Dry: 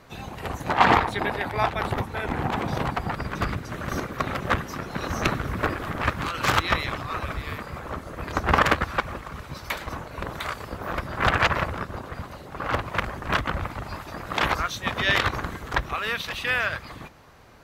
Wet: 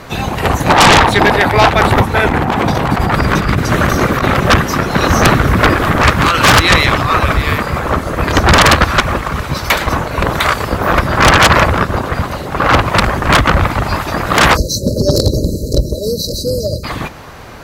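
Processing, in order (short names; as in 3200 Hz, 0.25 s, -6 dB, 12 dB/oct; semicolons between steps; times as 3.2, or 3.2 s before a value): 2.26–4.4 negative-ratio compressor -31 dBFS, ratio -1; 14.57–16.84 spectral delete 640–3900 Hz; sine folder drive 16 dB, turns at -1.5 dBFS; gain -1 dB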